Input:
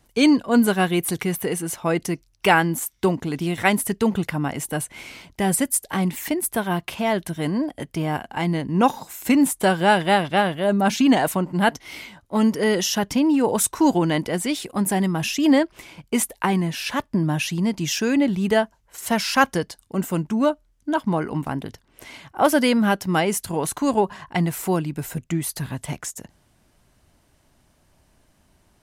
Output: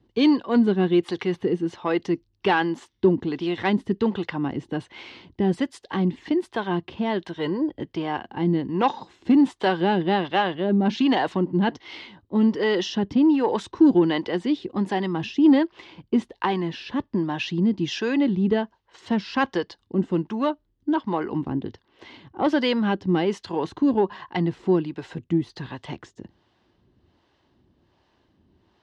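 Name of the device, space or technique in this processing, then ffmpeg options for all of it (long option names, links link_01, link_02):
guitar amplifier with harmonic tremolo: -filter_complex "[0:a]acrossover=split=460[link_01][link_02];[link_01]aeval=exprs='val(0)*(1-0.7/2+0.7/2*cos(2*PI*1.3*n/s))':channel_layout=same[link_03];[link_02]aeval=exprs='val(0)*(1-0.7/2-0.7/2*cos(2*PI*1.3*n/s))':channel_layout=same[link_04];[link_03][link_04]amix=inputs=2:normalize=0,asoftclip=type=tanh:threshold=-12.5dB,highpass=76,equalizer=frequency=150:width_type=q:width=4:gain=-5,equalizer=frequency=350:width_type=q:width=4:gain=6,equalizer=frequency=640:width_type=q:width=4:gain=-7,equalizer=frequency=1400:width_type=q:width=4:gain=-6,equalizer=frequency=2300:width_type=q:width=4:gain=-8,lowpass=frequency=4100:width=0.5412,lowpass=frequency=4100:width=1.3066,asettb=1/sr,asplit=3[link_05][link_06][link_07];[link_05]atrim=end=7.374[link_08];[link_06]atrim=start=7.37:end=7.78,asetpts=PTS-STARTPTS,afade=type=in:duration=0.004:curve=qsin,afade=type=out:start_time=0.406:duration=0.004:curve=qsin,aecho=1:1:2.1:0.65,atrim=end_sample=18081[link_09];[link_07]atrim=start=7.776[link_10];[link_08][link_09]acrossfade=duration=0.004:curve1=hsin:curve2=qsin[link_11];[link_11][link_10]acrossfade=duration=0.004:curve1=qsin:curve2=hsin,volume=3dB"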